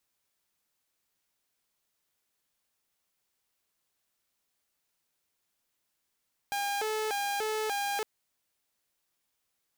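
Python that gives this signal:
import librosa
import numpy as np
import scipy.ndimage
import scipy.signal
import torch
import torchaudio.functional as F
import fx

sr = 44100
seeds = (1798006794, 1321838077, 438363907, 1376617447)

y = fx.siren(sr, length_s=1.51, kind='hi-lo', low_hz=433.0, high_hz=807.0, per_s=1.7, wave='saw', level_db=-27.0)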